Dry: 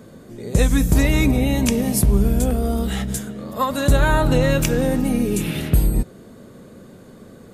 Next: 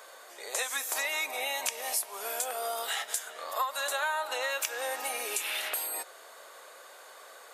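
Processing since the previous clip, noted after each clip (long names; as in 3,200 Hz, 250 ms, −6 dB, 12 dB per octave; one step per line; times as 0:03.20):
inverse Chebyshev high-pass filter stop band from 160 Hz, stop band 70 dB
downward compressor 4 to 1, threshold −35 dBFS, peak gain reduction 14.5 dB
level +4.5 dB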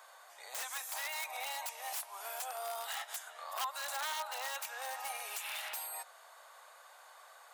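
wrap-around overflow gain 24.5 dB
four-pole ladder high-pass 650 Hz, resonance 40%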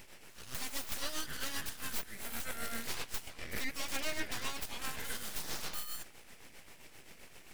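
full-wave rectification
amplitude tremolo 7.6 Hz, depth 54%
level +6.5 dB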